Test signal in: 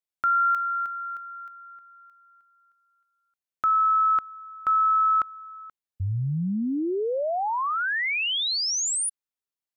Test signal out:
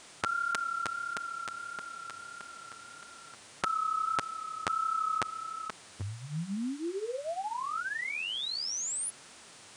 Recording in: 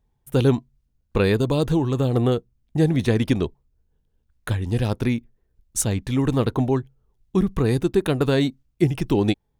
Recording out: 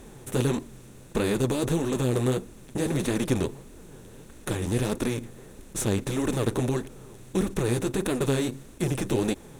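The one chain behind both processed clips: spectral levelling over time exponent 0.4; treble shelf 8.6 kHz +4 dB; flange 1.6 Hz, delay 2.7 ms, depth 7.8 ms, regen -1%; trim -8 dB

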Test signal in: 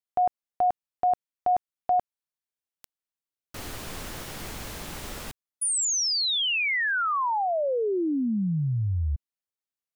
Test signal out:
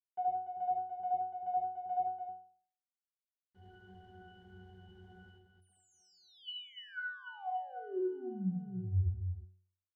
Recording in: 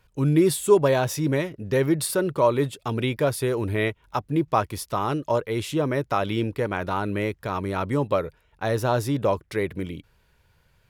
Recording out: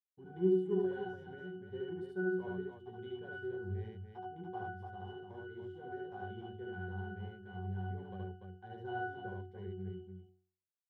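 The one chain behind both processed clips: expander -44 dBFS; power-law waveshaper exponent 1.4; pitch-class resonator F#, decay 0.48 s; on a send: loudspeakers at several distances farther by 25 m -1 dB, 100 m -6 dB; on the sum: trim +2 dB

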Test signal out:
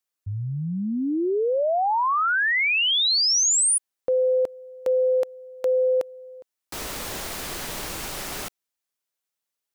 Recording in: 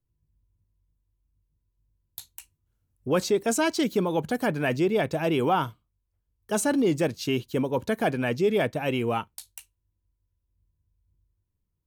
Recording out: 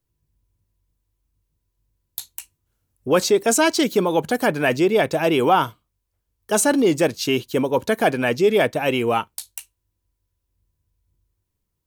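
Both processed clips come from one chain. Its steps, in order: tone controls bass -7 dB, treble +2 dB; trim +7.5 dB

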